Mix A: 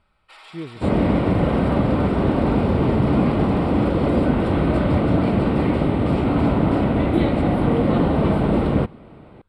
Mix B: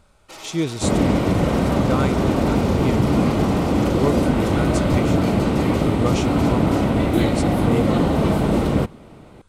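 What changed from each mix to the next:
speech +10.0 dB; first sound: remove high-pass 1.2 kHz 12 dB/octave; master: remove boxcar filter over 7 samples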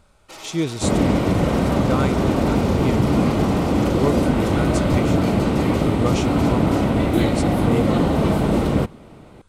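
no change

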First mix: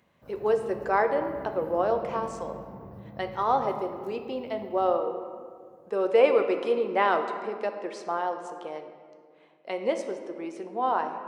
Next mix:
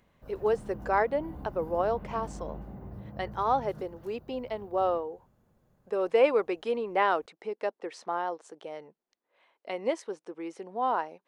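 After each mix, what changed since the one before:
speech: send off; master: remove high-pass 100 Hz 12 dB/octave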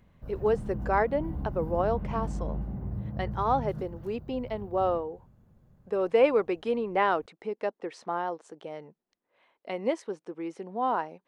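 master: add tone controls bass +10 dB, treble -3 dB

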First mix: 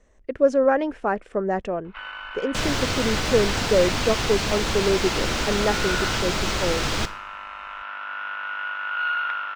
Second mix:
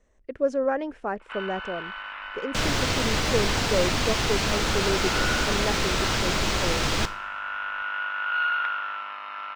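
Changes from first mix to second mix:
speech -6.0 dB; first sound: entry -0.65 s

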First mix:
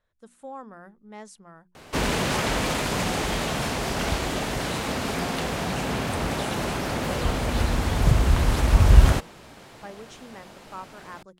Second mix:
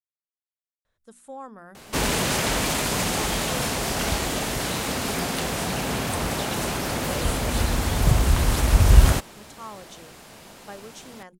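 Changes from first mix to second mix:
speech: entry +0.85 s; master: add treble shelf 6.1 kHz +10.5 dB

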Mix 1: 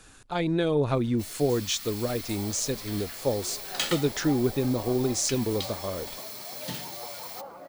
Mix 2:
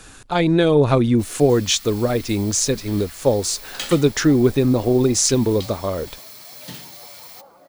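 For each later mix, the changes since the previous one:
speech +9.5 dB; second sound -5.5 dB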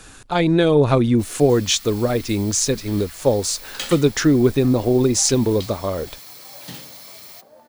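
second sound: entry +0.90 s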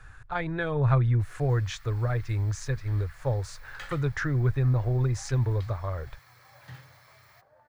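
master: add FFT filter 130 Hz 0 dB, 200 Hz -24 dB, 1.7 kHz -3 dB, 2.9 kHz -18 dB, 9.5 kHz -25 dB

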